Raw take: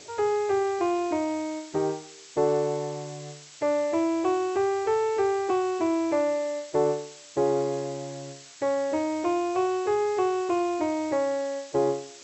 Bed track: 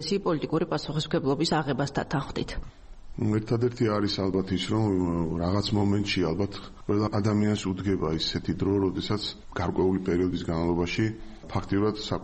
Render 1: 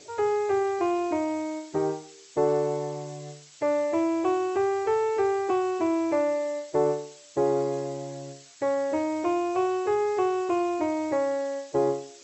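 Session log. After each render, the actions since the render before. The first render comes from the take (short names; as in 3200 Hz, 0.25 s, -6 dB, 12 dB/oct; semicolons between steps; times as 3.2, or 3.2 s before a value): denoiser 6 dB, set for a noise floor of -48 dBFS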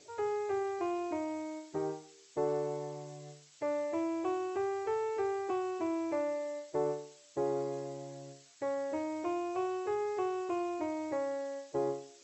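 gain -9 dB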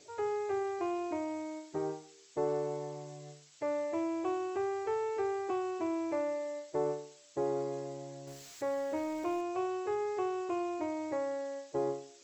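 8.27–9.41 zero-crossing step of -48.5 dBFS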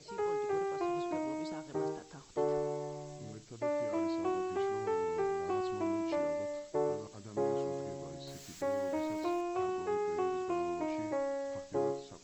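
add bed track -24 dB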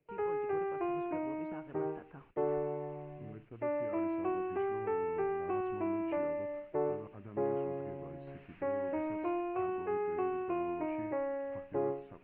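gate with hold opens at -41 dBFS; Chebyshev low-pass 2700 Hz, order 5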